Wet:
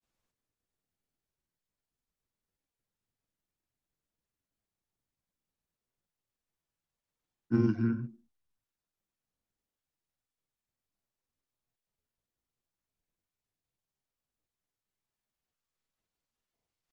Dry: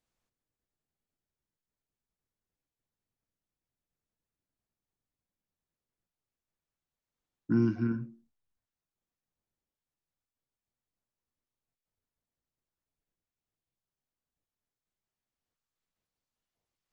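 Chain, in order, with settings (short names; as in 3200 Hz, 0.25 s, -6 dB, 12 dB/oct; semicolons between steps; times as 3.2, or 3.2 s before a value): hard clip -17.5 dBFS, distortion -31 dB; grains, spray 22 ms, pitch spread up and down by 0 st; gain +1.5 dB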